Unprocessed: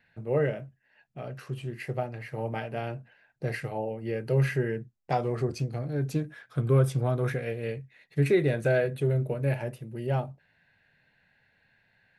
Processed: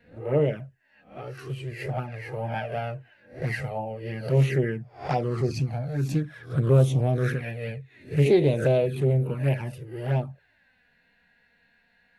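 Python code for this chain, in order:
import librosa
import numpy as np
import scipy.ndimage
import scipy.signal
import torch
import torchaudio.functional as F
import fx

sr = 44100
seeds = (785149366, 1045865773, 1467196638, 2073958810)

y = fx.spec_swells(x, sr, rise_s=0.38)
y = fx.env_flanger(y, sr, rest_ms=4.3, full_db=-20.5)
y = fx.doppler_dist(y, sr, depth_ms=0.24)
y = y * librosa.db_to_amplitude(4.0)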